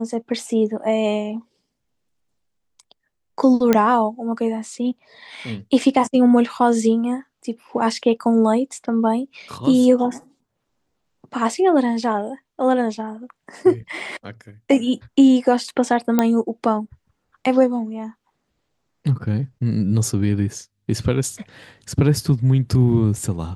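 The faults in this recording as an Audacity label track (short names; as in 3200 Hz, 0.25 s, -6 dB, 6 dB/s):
3.730000	3.730000	pop -3 dBFS
16.190000	16.190000	pop -4 dBFS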